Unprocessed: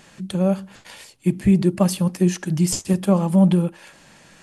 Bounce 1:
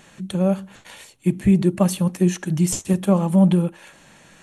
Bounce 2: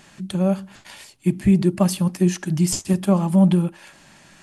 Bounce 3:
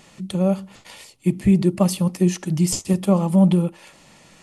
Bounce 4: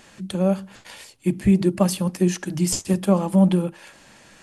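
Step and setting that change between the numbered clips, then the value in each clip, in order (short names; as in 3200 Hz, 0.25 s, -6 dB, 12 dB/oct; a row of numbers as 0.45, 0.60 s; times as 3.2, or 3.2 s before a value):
notch, frequency: 4900, 490, 1600, 160 Hz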